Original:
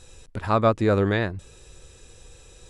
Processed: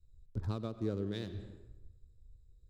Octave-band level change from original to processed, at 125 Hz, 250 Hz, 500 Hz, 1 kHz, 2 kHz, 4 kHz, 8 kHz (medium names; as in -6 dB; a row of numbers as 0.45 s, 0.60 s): -12.5 dB, -13.5 dB, -18.5 dB, -26.5 dB, -25.0 dB, -13.0 dB, no reading